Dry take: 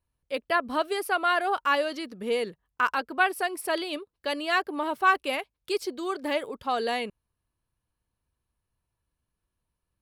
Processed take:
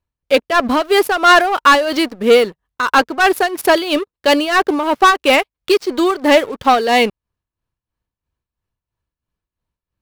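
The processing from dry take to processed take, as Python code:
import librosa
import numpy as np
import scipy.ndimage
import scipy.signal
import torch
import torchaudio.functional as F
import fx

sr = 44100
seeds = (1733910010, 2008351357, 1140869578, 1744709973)

y = scipy.ndimage.median_filter(x, 5, mode='constant')
y = fx.leveller(y, sr, passes=3)
y = y * (1.0 - 0.67 / 2.0 + 0.67 / 2.0 * np.cos(2.0 * np.pi * 3.0 * (np.arange(len(y)) / sr)))
y = F.gain(torch.from_numpy(y), 8.5).numpy()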